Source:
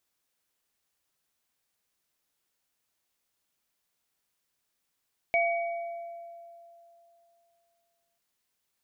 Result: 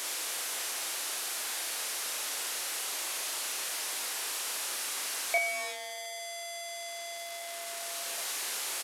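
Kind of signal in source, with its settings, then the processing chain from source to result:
inharmonic partials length 2.84 s, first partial 682 Hz, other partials 2,260 Hz, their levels −0.5 dB, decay 2.94 s, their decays 1.22 s, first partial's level −23 dB
linear delta modulator 64 kbit/s, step −29 dBFS
Bessel high-pass filter 470 Hz, order 4
double-tracking delay 36 ms −4 dB

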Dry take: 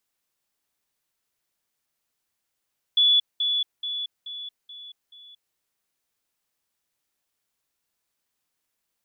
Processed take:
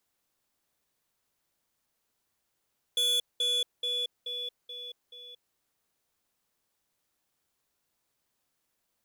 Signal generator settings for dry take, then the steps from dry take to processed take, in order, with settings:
level staircase 3,430 Hz −15 dBFS, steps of −6 dB, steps 6, 0.23 s 0.20 s
in parallel at −11 dB: decimation without filtering 15×
on the sum: soft clipping −25.5 dBFS

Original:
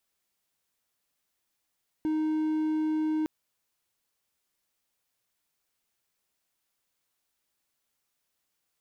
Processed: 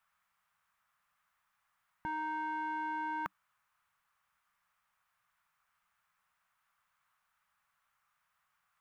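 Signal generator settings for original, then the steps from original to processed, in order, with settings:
tone triangle 311 Hz −23 dBFS 1.21 s
drawn EQ curve 190 Hz 0 dB, 300 Hz −20 dB, 1,200 Hz +15 dB, 4,400 Hz −7 dB

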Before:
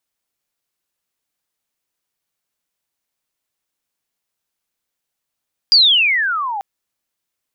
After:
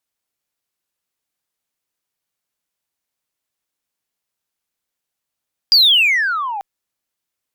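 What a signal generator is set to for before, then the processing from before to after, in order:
glide logarithmic 4,900 Hz → 770 Hz −6 dBFS → −21 dBFS 0.89 s
harmonic generator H 5 −24 dB, 7 −23 dB, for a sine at −6 dBFS

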